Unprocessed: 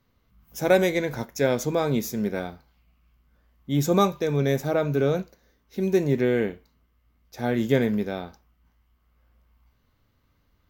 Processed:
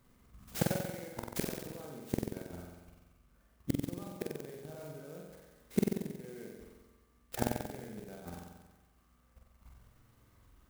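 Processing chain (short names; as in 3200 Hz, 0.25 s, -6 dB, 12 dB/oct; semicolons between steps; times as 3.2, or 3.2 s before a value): level quantiser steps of 15 dB; flipped gate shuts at -23 dBFS, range -28 dB; on a send: flutter echo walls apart 7.9 m, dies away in 1.2 s; on the sum: clock jitter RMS 0.061 ms; gain +8 dB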